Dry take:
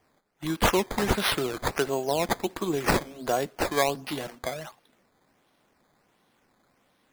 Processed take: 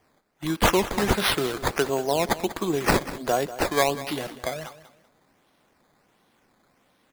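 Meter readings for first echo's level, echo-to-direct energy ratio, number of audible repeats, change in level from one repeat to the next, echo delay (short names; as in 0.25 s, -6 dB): -15.0 dB, -14.5 dB, 2, -12.0 dB, 0.192 s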